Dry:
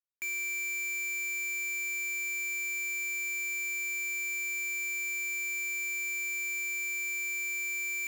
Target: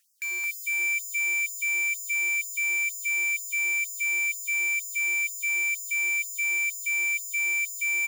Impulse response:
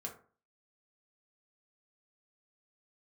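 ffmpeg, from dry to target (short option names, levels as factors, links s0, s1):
-filter_complex "[0:a]equalizer=f=500:t=o:w=1:g=5,equalizer=f=1000:t=o:w=1:g=8,equalizer=f=2000:t=o:w=1:g=-4,equalizer=f=4000:t=o:w=1:g=-8,asplit=2[s0][s1];[s1]highpass=f=720:p=1,volume=56.2,asoftclip=type=tanh:threshold=0.0316[s2];[s0][s2]amix=inputs=2:normalize=0,lowpass=f=7500:p=1,volume=0.501,asplit=2[s3][s4];[s4]aecho=0:1:220|418|596.2|756.6|900.9:0.631|0.398|0.251|0.158|0.1[s5];[s3][s5]amix=inputs=2:normalize=0,afftfilt=real='re*gte(b*sr/1024,300*pow(5000/300,0.5+0.5*sin(2*PI*2.1*pts/sr)))':imag='im*gte(b*sr/1024,300*pow(5000/300,0.5+0.5*sin(2*PI*2.1*pts/sr)))':win_size=1024:overlap=0.75,volume=1.58"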